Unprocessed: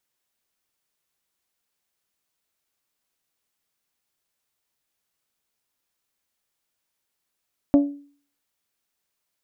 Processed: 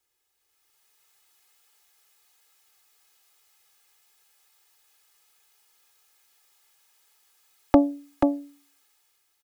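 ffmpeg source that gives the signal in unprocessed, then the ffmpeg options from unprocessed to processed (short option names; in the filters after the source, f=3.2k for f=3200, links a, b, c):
-f lavfi -i "aevalsrc='0.335*pow(10,-3*t/0.46)*sin(2*PI*285*t)+0.119*pow(10,-3*t/0.283)*sin(2*PI*570*t)+0.0422*pow(10,-3*t/0.249)*sin(2*PI*684*t)+0.015*pow(10,-3*t/0.213)*sin(2*PI*855*t)+0.00531*pow(10,-3*t/0.174)*sin(2*PI*1140*t)':d=0.89:s=44100"
-filter_complex "[0:a]aecho=1:1:2.4:0.87,acrossover=split=300|540[a][b][c];[c]dynaudnorm=f=100:g=13:m=11.5dB[d];[a][b][d]amix=inputs=3:normalize=0,aecho=1:1:484:0.596"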